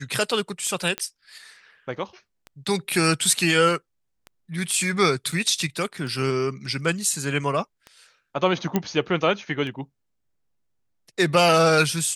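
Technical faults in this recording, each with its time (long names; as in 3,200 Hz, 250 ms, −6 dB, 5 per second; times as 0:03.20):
scratch tick 33 1/3 rpm −23 dBFS
0:00.98: click −12 dBFS
0:05.32: drop-out 4.2 ms
0:08.76: click −8 dBFS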